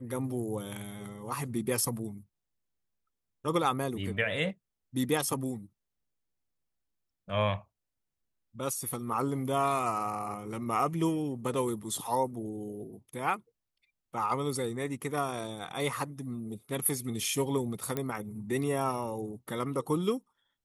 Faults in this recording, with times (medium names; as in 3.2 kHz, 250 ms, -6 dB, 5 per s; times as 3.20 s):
17.97 s: pop -17 dBFS